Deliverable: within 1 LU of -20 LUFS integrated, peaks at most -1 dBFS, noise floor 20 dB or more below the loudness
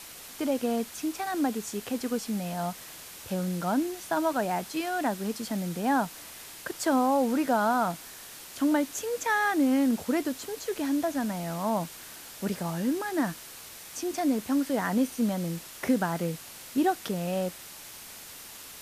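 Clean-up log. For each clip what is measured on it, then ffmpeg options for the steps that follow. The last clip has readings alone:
noise floor -45 dBFS; noise floor target -49 dBFS; loudness -29.0 LUFS; peak -14.0 dBFS; loudness target -20.0 LUFS
-> -af "afftdn=nr=6:nf=-45"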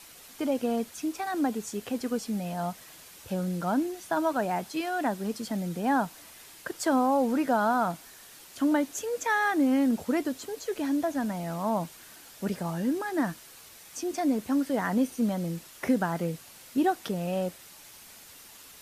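noise floor -50 dBFS; loudness -29.0 LUFS; peak -14.0 dBFS; loudness target -20.0 LUFS
-> -af "volume=9dB"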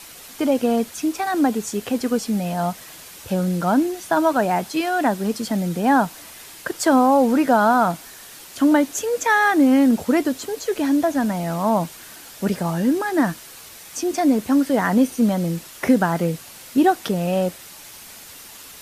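loudness -20.0 LUFS; peak -5.0 dBFS; noise floor -41 dBFS

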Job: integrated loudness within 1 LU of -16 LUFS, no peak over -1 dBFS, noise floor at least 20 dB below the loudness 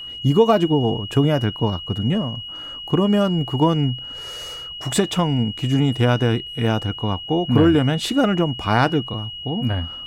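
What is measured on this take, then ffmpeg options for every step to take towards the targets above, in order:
steady tone 2900 Hz; tone level -31 dBFS; loudness -20.0 LUFS; peak -4.0 dBFS; loudness target -16.0 LUFS
-> -af "bandreject=f=2.9k:w=30"
-af "volume=4dB,alimiter=limit=-1dB:level=0:latency=1"

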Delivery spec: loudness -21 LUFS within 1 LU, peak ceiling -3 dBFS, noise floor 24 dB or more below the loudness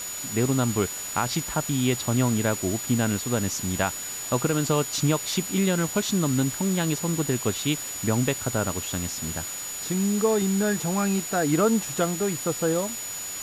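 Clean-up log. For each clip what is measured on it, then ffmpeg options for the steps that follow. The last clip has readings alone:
steady tone 6900 Hz; tone level -33 dBFS; noise floor -34 dBFS; noise floor target -49 dBFS; loudness -25.0 LUFS; peak -10.0 dBFS; loudness target -21.0 LUFS
-> -af "bandreject=f=6.9k:w=30"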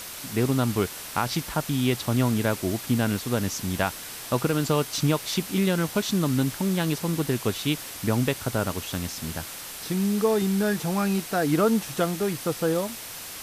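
steady tone none; noise floor -38 dBFS; noise floor target -50 dBFS
-> -af "afftdn=nr=12:nf=-38"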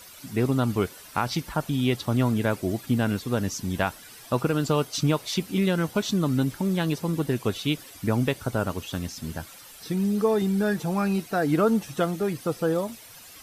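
noise floor -47 dBFS; noise floor target -50 dBFS
-> -af "afftdn=nr=6:nf=-47"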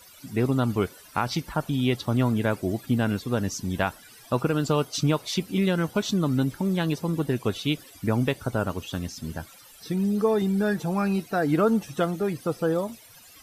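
noise floor -50 dBFS; loudness -26.0 LUFS; peak -10.5 dBFS; loudness target -21.0 LUFS
-> -af "volume=5dB"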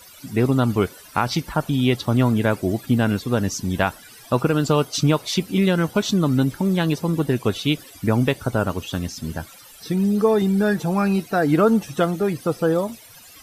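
loudness -21.0 LUFS; peak -5.5 dBFS; noise floor -45 dBFS

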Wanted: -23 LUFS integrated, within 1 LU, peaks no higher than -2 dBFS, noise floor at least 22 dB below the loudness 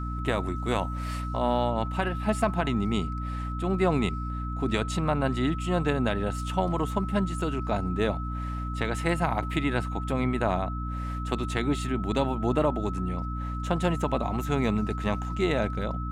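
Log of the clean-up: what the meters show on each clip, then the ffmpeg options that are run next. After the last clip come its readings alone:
hum 60 Hz; harmonics up to 300 Hz; hum level -30 dBFS; steady tone 1300 Hz; tone level -37 dBFS; loudness -28.5 LUFS; peak -11.0 dBFS; loudness target -23.0 LUFS
-> -af "bandreject=f=60:t=h:w=4,bandreject=f=120:t=h:w=4,bandreject=f=180:t=h:w=4,bandreject=f=240:t=h:w=4,bandreject=f=300:t=h:w=4"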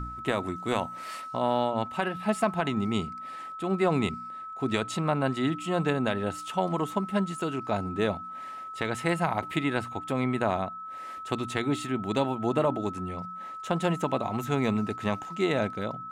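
hum none; steady tone 1300 Hz; tone level -37 dBFS
-> -af "bandreject=f=1.3k:w=30"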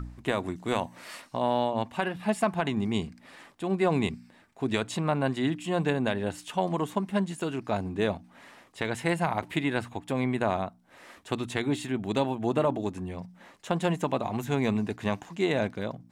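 steady tone none; loudness -29.5 LUFS; peak -12.0 dBFS; loudness target -23.0 LUFS
-> -af "volume=6.5dB"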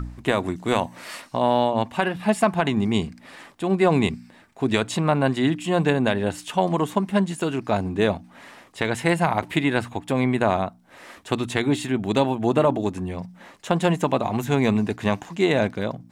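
loudness -23.0 LUFS; peak -5.5 dBFS; noise floor -51 dBFS

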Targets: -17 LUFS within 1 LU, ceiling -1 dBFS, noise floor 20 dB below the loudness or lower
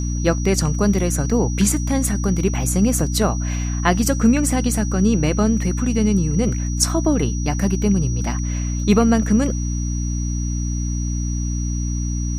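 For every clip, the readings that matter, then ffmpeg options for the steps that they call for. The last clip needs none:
hum 60 Hz; harmonics up to 300 Hz; hum level -20 dBFS; steady tone 5800 Hz; tone level -33 dBFS; loudness -20.0 LUFS; peak -2.5 dBFS; loudness target -17.0 LUFS
-> -af "bandreject=f=60:t=h:w=6,bandreject=f=120:t=h:w=6,bandreject=f=180:t=h:w=6,bandreject=f=240:t=h:w=6,bandreject=f=300:t=h:w=6"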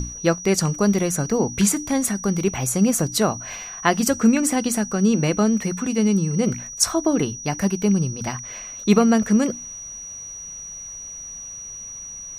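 hum none; steady tone 5800 Hz; tone level -33 dBFS
-> -af "bandreject=f=5.8k:w=30"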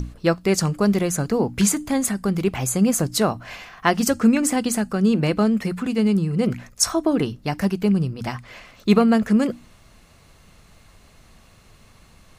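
steady tone none; loudness -21.0 LUFS; peak -3.0 dBFS; loudness target -17.0 LUFS
-> -af "volume=4dB,alimiter=limit=-1dB:level=0:latency=1"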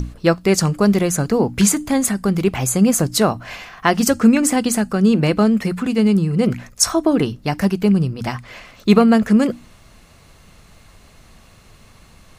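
loudness -17.0 LUFS; peak -1.0 dBFS; noise floor -48 dBFS

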